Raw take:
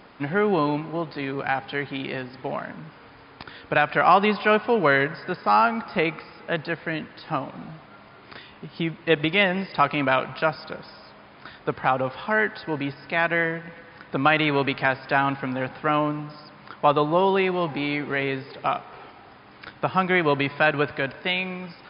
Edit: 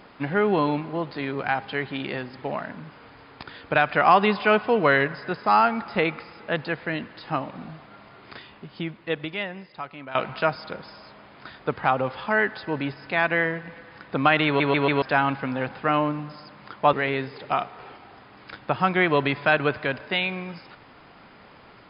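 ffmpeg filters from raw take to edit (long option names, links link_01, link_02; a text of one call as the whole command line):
ffmpeg -i in.wav -filter_complex "[0:a]asplit=7[link_01][link_02][link_03][link_04][link_05][link_06][link_07];[link_01]atrim=end=10.15,asetpts=PTS-STARTPTS,afade=type=out:start_time=8.37:duration=1.78:curve=qua:silence=0.149624[link_08];[link_02]atrim=start=10.15:end=14.602,asetpts=PTS-STARTPTS,afade=type=in:duration=0.004:curve=hsin:silence=0.149624[link_09];[link_03]atrim=start=14.458:end=14.602[link_10];[link_04]atrim=start=14.458:end=14.602[link_11];[link_05]atrim=start=14.458:end=14.602[link_12];[link_06]atrim=start=15.018:end=16.932[link_13];[link_07]atrim=start=18.068[link_14];[link_08][link_09]concat=n=2:v=0:a=1[link_15];[link_15][link_10]acrossfade=duration=0.004:curve1=hsin:curve2=hsin[link_16];[link_16][link_11]acrossfade=duration=0.004:curve1=hsin:curve2=hsin[link_17];[link_17][link_12]acrossfade=duration=0.004:curve1=hsin:curve2=hsin[link_18];[link_18][link_13]acrossfade=duration=0.004:curve1=hsin:curve2=hsin[link_19];[link_19][link_14]acrossfade=duration=0.004:curve1=hsin:curve2=hsin" out.wav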